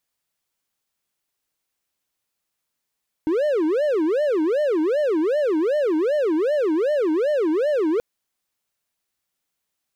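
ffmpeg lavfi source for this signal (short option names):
-f lavfi -i "aevalsrc='0.168*(1-4*abs(mod((456*t-150/(2*PI*2.6)*sin(2*PI*2.6*t))+0.25,1)-0.5))':d=4.73:s=44100"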